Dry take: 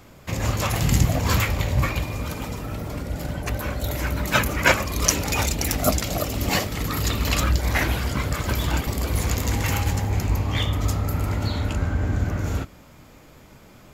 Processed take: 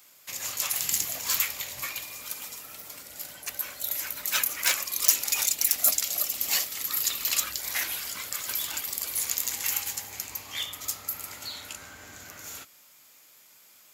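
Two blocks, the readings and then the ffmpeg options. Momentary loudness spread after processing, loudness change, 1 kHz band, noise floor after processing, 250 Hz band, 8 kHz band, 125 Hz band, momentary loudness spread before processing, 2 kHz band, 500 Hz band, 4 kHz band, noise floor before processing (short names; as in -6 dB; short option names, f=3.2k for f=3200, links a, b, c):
17 LU, -3.0 dB, -13.5 dB, -56 dBFS, -25.5 dB, +2.0 dB, -33.5 dB, 9 LU, -8.0 dB, -19.0 dB, -2.0 dB, -48 dBFS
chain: -af "aeval=exprs='0.299*(abs(mod(val(0)/0.299+3,4)-2)-1)':c=same,aderivative,volume=3.5dB"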